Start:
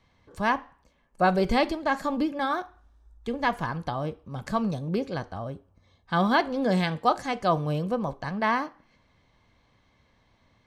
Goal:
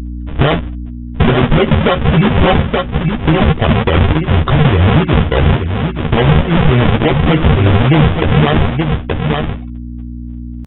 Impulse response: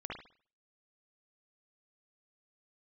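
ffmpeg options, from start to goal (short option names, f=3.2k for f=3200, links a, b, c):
-filter_complex "[0:a]afftfilt=real='re*gte(hypot(re,im),0.00708)':imag='im*gte(hypot(re,im),0.00708)':win_size=1024:overlap=0.75,lowpass=3.2k,adynamicequalizer=threshold=0.00891:dfrequency=420:dqfactor=2.4:tfrequency=420:tqfactor=2.4:attack=5:release=100:ratio=0.375:range=2:mode=cutabove:tftype=bell,acompressor=threshold=-31dB:ratio=8,aresample=11025,acrusher=samples=14:mix=1:aa=0.000001:lfo=1:lforange=22.4:lforate=3.5,aresample=44100,asetrate=29433,aresample=44100,atempo=1.49831,aeval=exprs='val(0)+0.00316*(sin(2*PI*60*n/s)+sin(2*PI*2*60*n/s)/2+sin(2*PI*3*60*n/s)/3+sin(2*PI*4*60*n/s)/4+sin(2*PI*5*60*n/s)/5)':c=same,asplit=2[a][b];[b]adelay=13,volume=-5.5dB[c];[a][c]amix=inputs=2:normalize=0,asplit=2[d][e];[e]aecho=0:1:875:0.335[f];[d][f]amix=inputs=2:normalize=0,alimiter=level_in=28.5dB:limit=-1dB:release=50:level=0:latency=1,volume=-1dB"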